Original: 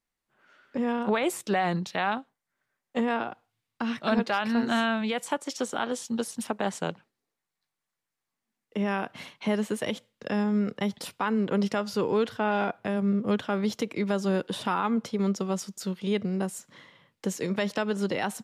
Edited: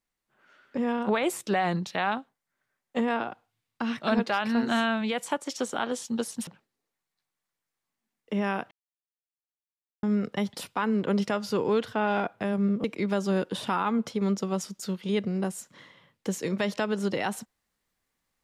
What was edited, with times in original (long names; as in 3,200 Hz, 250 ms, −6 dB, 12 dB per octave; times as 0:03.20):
0:06.47–0:06.91: remove
0:09.15–0:10.47: silence
0:13.28–0:13.82: remove